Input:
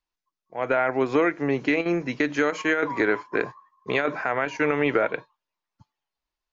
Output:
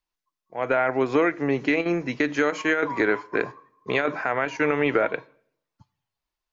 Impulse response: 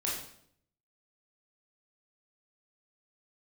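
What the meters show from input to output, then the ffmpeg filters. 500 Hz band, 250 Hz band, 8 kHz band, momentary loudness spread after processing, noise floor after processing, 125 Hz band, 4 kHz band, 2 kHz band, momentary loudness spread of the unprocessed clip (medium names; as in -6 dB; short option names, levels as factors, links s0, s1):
+0.5 dB, +0.5 dB, no reading, 7 LU, under -85 dBFS, +0.5 dB, +0.5 dB, +0.5 dB, 7 LU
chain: -filter_complex "[0:a]asplit=2[s0][s1];[1:a]atrim=start_sample=2205[s2];[s1][s2]afir=irnorm=-1:irlink=0,volume=0.0531[s3];[s0][s3]amix=inputs=2:normalize=0"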